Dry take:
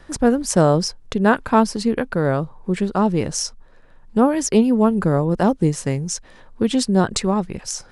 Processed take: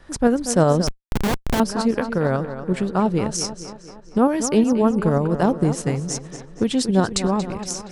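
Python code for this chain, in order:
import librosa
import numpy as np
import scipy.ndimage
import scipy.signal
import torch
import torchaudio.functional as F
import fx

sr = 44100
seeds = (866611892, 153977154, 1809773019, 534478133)

y = fx.echo_tape(x, sr, ms=233, feedback_pct=59, wet_db=-10.0, lp_hz=4700.0, drive_db=-3.0, wow_cents=18)
y = fx.schmitt(y, sr, flips_db=-14.5, at=(0.87, 1.6))
y = fx.tremolo_shape(y, sr, shape='saw_up', hz=11.0, depth_pct=35)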